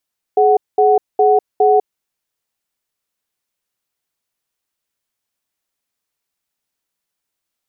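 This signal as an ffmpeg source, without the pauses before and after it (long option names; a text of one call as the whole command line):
ffmpeg -f lavfi -i "aevalsrc='0.282*(sin(2*PI*422*t)+sin(2*PI*743*t))*clip(min(mod(t,0.41),0.2-mod(t,0.41))/0.005,0,1)':duration=1.61:sample_rate=44100" out.wav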